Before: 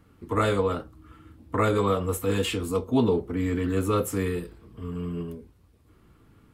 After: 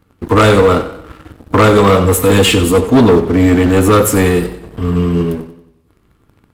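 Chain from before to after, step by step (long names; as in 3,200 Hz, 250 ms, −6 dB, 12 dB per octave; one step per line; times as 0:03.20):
leveller curve on the samples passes 3
feedback echo with a swinging delay time 92 ms, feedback 45%, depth 67 cents, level −13 dB
level +7.5 dB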